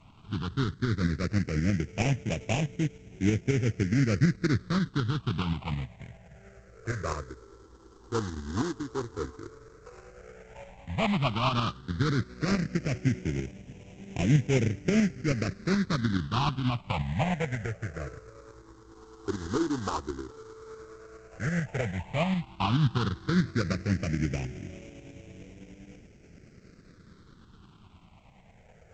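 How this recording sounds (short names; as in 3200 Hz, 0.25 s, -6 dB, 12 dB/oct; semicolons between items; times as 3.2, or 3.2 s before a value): aliases and images of a low sample rate 1800 Hz, jitter 20%; tremolo saw up 9.4 Hz, depth 50%; phasing stages 6, 0.089 Hz, lowest notch 160–1200 Hz; G.722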